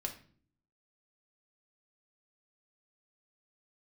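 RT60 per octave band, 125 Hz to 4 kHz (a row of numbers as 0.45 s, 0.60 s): 0.85 s, 0.80 s, 0.55 s, 0.40 s, 0.40 s, 0.40 s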